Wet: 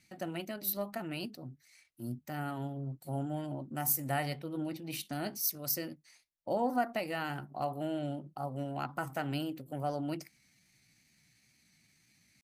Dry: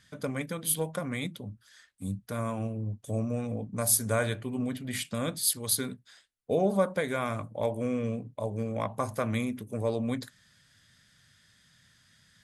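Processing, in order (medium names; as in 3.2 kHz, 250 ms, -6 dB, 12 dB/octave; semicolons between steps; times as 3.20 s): wow and flutter 22 cents; pitch shift +4 st; trim -5.5 dB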